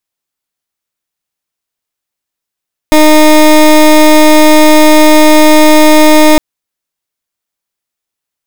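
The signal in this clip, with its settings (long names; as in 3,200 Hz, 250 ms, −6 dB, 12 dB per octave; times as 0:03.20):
pulse wave 307 Hz, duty 21% −3 dBFS 3.46 s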